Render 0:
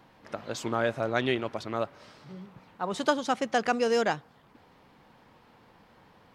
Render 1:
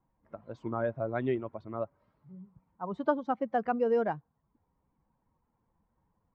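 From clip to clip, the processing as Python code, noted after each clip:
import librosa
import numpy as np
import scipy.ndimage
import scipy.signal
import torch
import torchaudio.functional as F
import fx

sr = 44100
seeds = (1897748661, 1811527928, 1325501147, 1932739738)

y = fx.bin_expand(x, sr, power=1.5)
y = scipy.signal.sosfilt(scipy.signal.butter(2, 1100.0, 'lowpass', fs=sr, output='sos'), y)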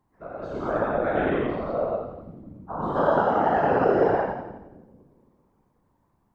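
y = fx.spec_dilate(x, sr, span_ms=240)
y = fx.echo_split(y, sr, split_hz=310.0, low_ms=220, high_ms=86, feedback_pct=52, wet_db=-4)
y = fx.whisperise(y, sr, seeds[0])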